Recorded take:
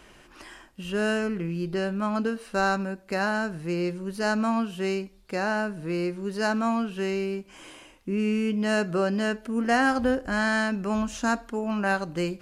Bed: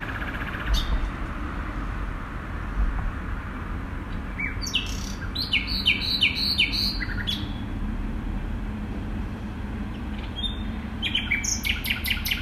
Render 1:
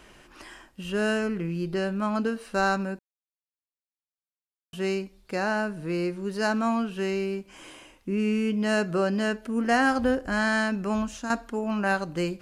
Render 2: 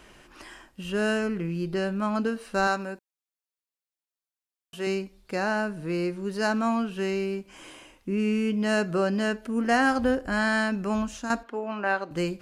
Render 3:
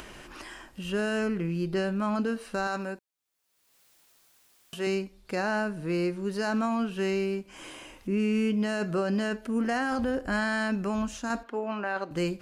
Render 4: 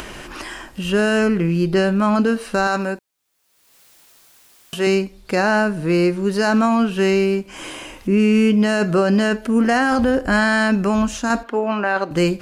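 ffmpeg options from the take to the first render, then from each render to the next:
-filter_complex "[0:a]asplit=4[a][b][c][d];[a]atrim=end=2.99,asetpts=PTS-STARTPTS,afade=t=out:st=2.986:d=0.004:c=hsin[e];[b]atrim=start=2.99:end=4.73,asetpts=PTS-STARTPTS,volume=0[f];[c]atrim=start=4.73:end=11.3,asetpts=PTS-STARTPTS,afade=t=in:d=0.004:c=hsin,afade=t=out:st=6.12:d=0.45:c=qsin:silence=0.334965[g];[d]atrim=start=11.3,asetpts=PTS-STARTPTS,afade=t=in:d=0.004:c=hsin:silence=0.334965[h];[e][f][g][h]concat=n=4:v=0:a=1"
-filter_complex "[0:a]asettb=1/sr,asplit=3[a][b][c];[a]atrim=end=2.674[d];[b]atrim=start=2.67:end=4.87,asetpts=PTS-STARTPTS,afade=t=in:d=0.004:c=qsin,afade=t=out:st=2.196:d=0.004:c=qsin,bass=f=250:g=-9,treble=f=4k:g=1[e];[c]atrim=start=4.866[f];[d][e]acrossfade=d=0.004:c1=hsin:c2=qsin[g];[g][f]acrossfade=d=0.004:c1=qsin:c2=hsin,asettb=1/sr,asplit=3[h][i][j];[h]atrim=end=10.224[k];[i]atrim=start=10.22:end=10.72,asetpts=PTS-STARTPTS,afade=t=in:d=0.004:c=qsin,afade=t=out:st=0.496:d=0.004:c=qsin,bandreject=f=6.2k:w=7.6[l];[j]atrim=start=10.716[m];[k][l]acrossfade=d=0.004:c1=hsin:c2=qsin[n];[n][m]acrossfade=d=0.004:c1=qsin:c2=hsin,asettb=1/sr,asplit=3[o][p][q];[o]atrim=end=11.434[r];[p]atrim=start=11.43:end=12.11,asetpts=PTS-STARTPTS,afade=t=in:d=0.004:c=qsin,afade=t=out:st=0.676:d=0.004:c=qsin,acrossover=split=250 3900:gain=0.0631 1 0.158[s][t][u];[s][t][u]amix=inputs=3:normalize=0[v];[q]atrim=start=12.106[w];[r][v]acrossfade=d=0.004:c1=hsin:c2=qsin[x];[x][w]acrossfade=d=0.004:c1=qsin:c2=hsin"
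-af "acompressor=mode=upward:threshold=-38dB:ratio=2.5,alimiter=limit=-20dB:level=0:latency=1:release=11"
-af "volume=11.5dB"

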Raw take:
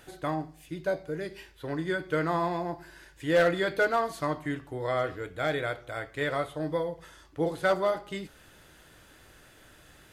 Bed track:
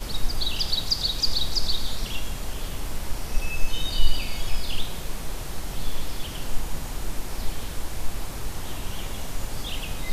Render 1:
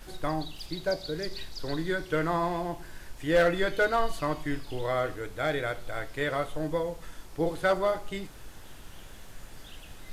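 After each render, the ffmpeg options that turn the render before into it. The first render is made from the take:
-filter_complex "[1:a]volume=-16dB[a];[0:a][a]amix=inputs=2:normalize=0"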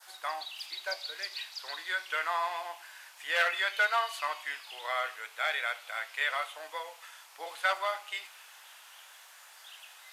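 -af "adynamicequalizer=threshold=0.00282:dfrequency=2600:dqfactor=1.8:tfrequency=2600:tqfactor=1.8:attack=5:release=100:ratio=0.375:range=4:mode=boostabove:tftype=bell,highpass=f=810:w=0.5412,highpass=f=810:w=1.3066"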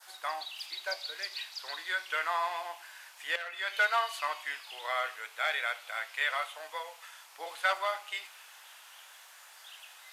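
-filter_complex "[0:a]asettb=1/sr,asplit=3[a][b][c];[a]atrim=end=6.124[d];[b]atrim=start=6.12:end=7.19,asetpts=PTS-STARTPTS,afade=t=in:d=0.004:c=qsin,afade=t=out:st=1.066:d=0.004:c=qsin,highpass=370[e];[c]atrim=start=7.186[f];[d][e]acrossfade=d=0.004:c1=hsin:c2=qsin[g];[g][f]acrossfade=d=0.004:c1=qsin:c2=hsin,asplit=2[h][i];[h]atrim=end=3.36,asetpts=PTS-STARTPTS,afade=t=out:st=3.356:d=0.004:c=hsin:silence=0.188365[j];[i]atrim=start=3.36,asetpts=PTS-STARTPTS,afade=t=in:d=0.4:c=qua:silence=0.188365[k];[j][k]concat=n=2:v=0:a=1"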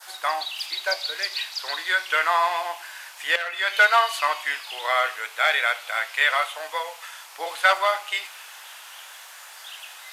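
-af "volume=10.5dB"

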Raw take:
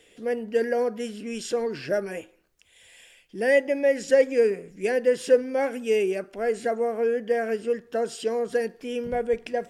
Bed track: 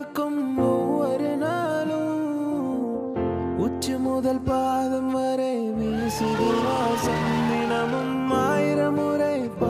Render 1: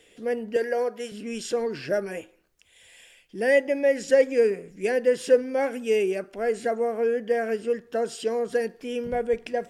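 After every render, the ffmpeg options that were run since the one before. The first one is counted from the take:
-filter_complex "[0:a]asettb=1/sr,asplit=3[a][b][c];[a]atrim=end=0.564[d];[b]atrim=start=0.56:end=1.12,asetpts=PTS-STARTPTS,afade=t=in:d=0.004:c=qsin,afade=t=out:st=0.556:d=0.004:c=qsin,highpass=360[e];[c]atrim=start=1.116[f];[d][e]acrossfade=d=0.004:c1=hsin:c2=qsin[g];[g][f]acrossfade=d=0.004:c1=qsin:c2=hsin"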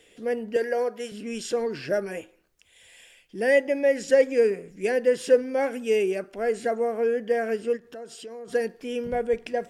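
-filter_complex "[0:a]asplit=3[a][b][c];[a]afade=t=out:st=7.76:d=0.02[d];[b]acompressor=threshold=-41dB:ratio=3:attack=3.2:release=140:knee=1:detection=peak,afade=t=in:st=7.76:d=0.02,afade=t=out:st=8.47:d=0.02[e];[c]afade=t=in:st=8.47:d=0.02[f];[d][e][f]amix=inputs=3:normalize=0"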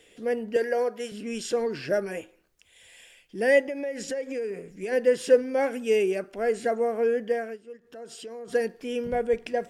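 -filter_complex "[0:a]asplit=3[a][b][c];[a]afade=t=out:st=3.66:d=0.02[d];[b]acompressor=threshold=-29dB:ratio=5:attack=3.2:release=140:knee=1:detection=peak,afade=t=in:st=3.66:d=0.02,afade=t=out:st=4.91:d=0.02[e];[c]afade=t=in:st=4.91:d=0.02[f];[d][e][f]amix=inputs=3:normalize=0,asplit=3[g][h][i];[g]atrim=end=7.59,asetpts=PTS-STARTPTS,afade=t=out:st=7.23:d=0.36:silence=0.133352[j];[h]atrim=start=7.59:end=7.74,asetpts=PTS-STARTPTS,volume=-17.5dB[k];[i]atrim=start=7.74,asetpts=PTS-STARTPTS,afade=t=in:d=0.36:silence=0.133352[l];[j][k][l]concat=n=3:v=0:a=1"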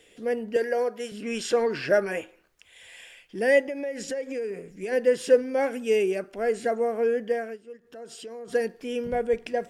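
-filter_complex "[0:a]asettb=1/sr,asplit=3[a][b][c];[a]atrim=end=1.224[d];[b]atrim=start=1.22:end=3.39,asetpts=PTS-STARTPTS,afade=t=in:d=0.004:c=qsin,afade=t=out:st=2.166:d=0.004:c=qsin,equalizer=f=1.4k:t=o:w=2.9:g=7[e];[c]atrim=start=3.386[f];[d][e]acrossfade=d=0.004:c1=hsin:c2=qsin[g];[g][f]acrossfade=d=0.004:c1=qsin:c2=hsin"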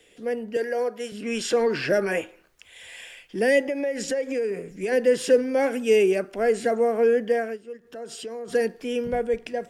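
-filter_complex "[0:a]acrossover=split=230|430|2300[a][b][c][d];[c]alimiter=limit=-24dB:level=0:latency=1[e];[a][b][e][d]amix=inputs=4:normalize=0,dynaudnorm=f=550:g=5:m=5dB"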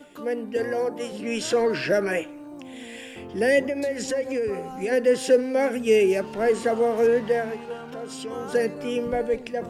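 -filter_complex "[1:a]volume=-14.5dB[a];[0:a][a]amix=inputs=2:normalize=0"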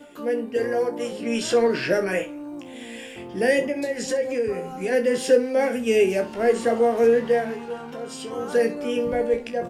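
-filter_complex "[0:a]asplit=2[a][b];[b]adelay=31,volume=-12.5dB[c];[a][c]amix=inputs=2:normalize=0,asplit=2[d][e];[e]aecho=0:1:17|65:0.473|0.178[f];[d][f]amix=inputs=2:normalize=0"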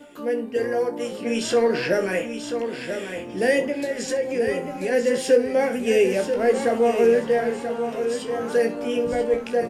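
-af "aecho=1:1:986|1972|2958:0.398|0.111|0.0312"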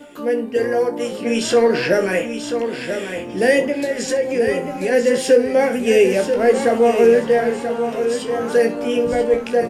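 -af "volume=5dB,alimiter=limit=-3dB:level=0:latency=1"

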